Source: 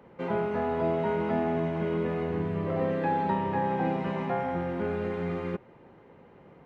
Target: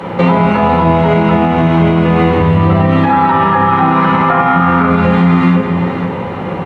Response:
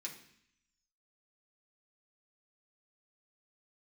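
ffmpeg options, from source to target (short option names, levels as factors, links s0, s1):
-filter_complex "[0:a]asettb=1/sr,asplit=3[s0][s1][s2];[s0]atrim=end=3.094[s3];[s1]atrim=start=3.09:end=4.87,asetpts=PTS-STARTPTS,afade=t=in:d=0.004:c=qsin,afade=t=out:st=1.776:d=0.004:c=qsin,equalizer=f=1300:t=o:w=0.82:g=15[s4];[s2]atrim=start=4.866[s5];[s3][s4]acrossfade=d=0.004:c1=hsin:c2=qsin[s6];[s6][s5]acrossfade=d=0.004:c1=qsin:c2=hsin,acompressor=threshold=0.0112:ratio=4,aecho=1:1:495:0.266[s7];[1:a]atrim=start_sample=2205,asetrate=23373,aresample=44100[s8];[s7][s8]afir=irnorm=-1:irlink=0,alimiter=level_in=44.7:limit=0.891:release=50:level=0:latency=1,volume=0.891"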